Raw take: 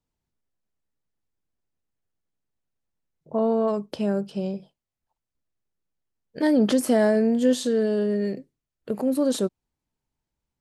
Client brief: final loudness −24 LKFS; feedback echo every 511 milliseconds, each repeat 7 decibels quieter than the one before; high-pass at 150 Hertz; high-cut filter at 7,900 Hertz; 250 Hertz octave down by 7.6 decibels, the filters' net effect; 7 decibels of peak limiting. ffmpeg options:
ffmpeg -i in.wav -af "highpass=150,lowpass=7900,equalizer=frequency=250:width_type=o:gain=-8,alimiter=limit=-19dB:level=0:latency=1,aecho=1:1:511|1022|1533|2044|2555:0.447|0.201|0.0905|0.0407|0.0183,volume=5.5dB" out.wav

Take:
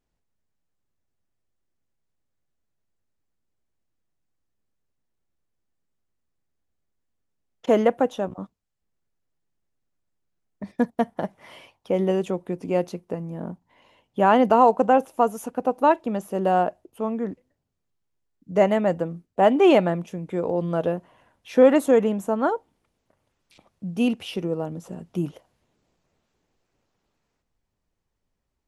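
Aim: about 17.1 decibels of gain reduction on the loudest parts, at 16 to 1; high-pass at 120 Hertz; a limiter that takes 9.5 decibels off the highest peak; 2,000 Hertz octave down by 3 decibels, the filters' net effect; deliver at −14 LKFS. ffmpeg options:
ffmpeg -i in.wav -af "highpass=120,equalizer=frequency=2000:width_type=o:gain=-4,acompressor=threshold=-28dB:ratio=16,volume=23dB,alimiter=limit=-2dB:level=0:latency=1" out.wav

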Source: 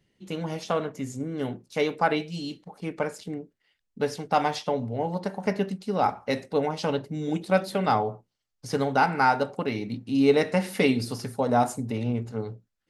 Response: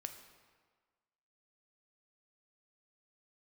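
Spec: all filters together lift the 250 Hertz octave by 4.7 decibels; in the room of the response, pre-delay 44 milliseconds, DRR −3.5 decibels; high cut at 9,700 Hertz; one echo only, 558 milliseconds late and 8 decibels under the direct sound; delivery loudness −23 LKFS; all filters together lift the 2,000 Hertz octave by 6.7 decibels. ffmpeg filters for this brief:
-filter_complex "[0:a]lowpass=9700,equalizer=frequency=250:width_type=o:gain=5.5,equalizer=frequency=2000:width_type=o:gain=9,aecho=1:1:558:0.398,asplit=2[link_01][link_02];[1:a]atrim=start_sample=2205,adelay=44[link_03];[link_02][link_03]afir=irnorm=-1:irlink=0,volume=6.5dB[link_04];[link_01][link_04]amix=inputs=2:normalize=0,volume=-4.5dB"

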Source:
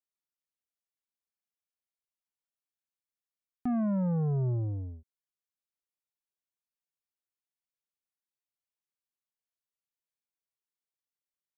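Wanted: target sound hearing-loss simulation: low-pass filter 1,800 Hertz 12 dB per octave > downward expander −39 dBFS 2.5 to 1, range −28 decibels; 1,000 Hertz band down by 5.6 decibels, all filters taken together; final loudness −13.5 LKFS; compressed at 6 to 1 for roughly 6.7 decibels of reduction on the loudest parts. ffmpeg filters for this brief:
ffmpeg -i in.wav -af "equalizer=frequency=1000:width_type=o:gain=-8.5,acompressor=threshold=-35dB:ratio=6,lowpass=1800,agate=range=-28dB:threshold=-39dB:ratio=2.5,volume=24dB" out.wav

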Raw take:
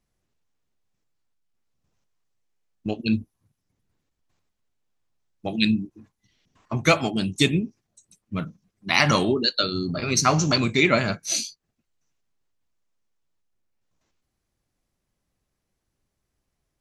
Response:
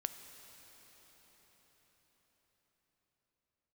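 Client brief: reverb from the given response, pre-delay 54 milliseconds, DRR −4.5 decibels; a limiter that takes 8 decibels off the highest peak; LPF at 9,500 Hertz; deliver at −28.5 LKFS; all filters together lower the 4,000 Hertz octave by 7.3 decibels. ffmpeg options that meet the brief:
-filter_complex "[0:a]lowpass=9500,equalizer=frequency=4000:width_type=o:gain=-8.5,alimiter=limit=-12.5dB:level=0:latency=1,asplit=2[link_01][link_02];[1:a]atrim=start_sample=2205,adelay=54[link_03];[link_02][link_03]afir=irnorm=-1:irlink=0,volume=5dB[link_04];[link_01][link_04]amix=inputs=2:normalize=0,volume=-7.5dB"

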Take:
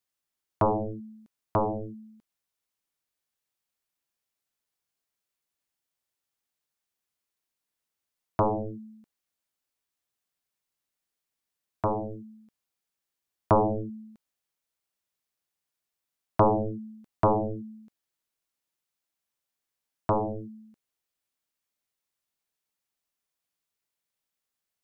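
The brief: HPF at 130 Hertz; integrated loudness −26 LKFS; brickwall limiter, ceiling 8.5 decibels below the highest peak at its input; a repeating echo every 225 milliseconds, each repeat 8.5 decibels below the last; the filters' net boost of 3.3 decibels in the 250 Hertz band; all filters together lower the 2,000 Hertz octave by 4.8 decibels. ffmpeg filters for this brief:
ffmpeg -i in.wav -af "highpass=130,equalizer=frequency=250:width_type=o:gain=5,equalizer=frequency=2000:width_type=o:gain=-7.5,alimiter=limit=-17dB:level=0:latency=1,aecho=1:1:225|450|675|900:0.376|0.143|0.0543|0.0206,volume=5.5dB" out.wav

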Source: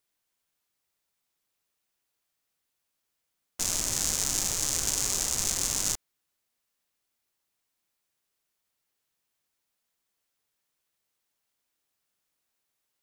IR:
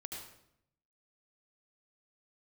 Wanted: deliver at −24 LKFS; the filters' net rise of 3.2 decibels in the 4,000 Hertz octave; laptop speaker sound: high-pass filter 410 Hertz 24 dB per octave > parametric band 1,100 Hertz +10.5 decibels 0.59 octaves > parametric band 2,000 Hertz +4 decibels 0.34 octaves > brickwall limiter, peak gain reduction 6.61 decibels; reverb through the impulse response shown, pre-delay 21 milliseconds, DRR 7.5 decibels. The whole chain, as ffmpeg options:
-filter_complex "[0:a]equalizer=frequency=4000:width_type=o:gain=4,asplit=2[link_01][link_02];[1:a]atrim=start_sample=2205,adelay=21[link_03];[link_02][link_03]afir=irnorm=-1:irlink=0,volume=-5.5dB[link_04];[link_01][link_04]amix=inputs=2:normalize=0,highpass=frequency=410:width=0.5412,highpass=frequency=410:width=1.3066,equalizer=frequency=1100:width_type=o:width=0.59:gain=10.5,equalizer=frequency=2000:width_type=o:width=0.34:gain=4,volume=4.5dB,alimiter=limit=-8dB:level=0:latency=1"

